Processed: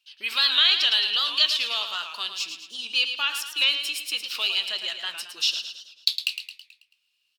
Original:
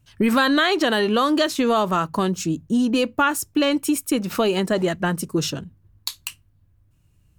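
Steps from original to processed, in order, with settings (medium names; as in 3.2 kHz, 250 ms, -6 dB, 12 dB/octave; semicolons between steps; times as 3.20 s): high-pass 1.4 kHz 12 dB/octave; high-order bell 3.6 kHz +15.5 dB 1.3 oct; flange 0.83 Hz, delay 4.6 ms, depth 9.9 ms, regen -81%; on a send: feedback delay 109 ms, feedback 50%, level -8.5 dB; on the sum: warped record 78 rpm, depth 100 cents; trim -3.5 dB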